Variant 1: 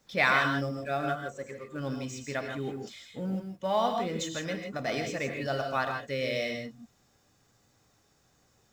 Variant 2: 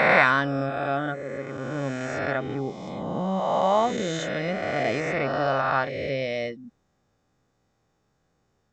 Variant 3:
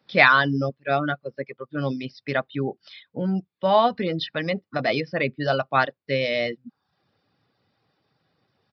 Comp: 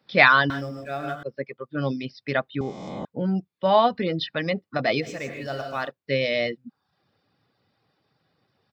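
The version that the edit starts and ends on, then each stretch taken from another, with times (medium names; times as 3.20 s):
3
0.50–1.23 s: from 1
2.61–3.05 s: from 2
5.05–5.86 s: from 1, crossfade 0.10 s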